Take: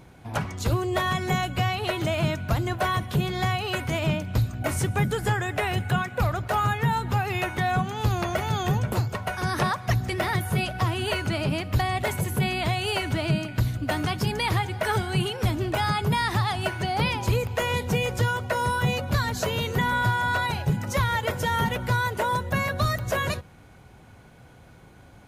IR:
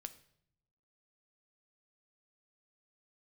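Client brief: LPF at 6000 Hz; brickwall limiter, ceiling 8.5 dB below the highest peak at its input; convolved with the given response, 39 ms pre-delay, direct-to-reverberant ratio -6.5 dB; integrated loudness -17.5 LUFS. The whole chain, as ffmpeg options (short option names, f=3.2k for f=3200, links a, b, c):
-filter_complex "[0:a]lowpass=6k,alimiter=limit=-22dB:level=0:latency=1,asplit=2[a][b];[1:a]atrim=start_sample=2205,adelay=39[c];[b][c]afir=irnorm=-1:irlink=0,volume=11dB[d];[a][d]amix=inputs=2:normalize=0,volume=5.5dB"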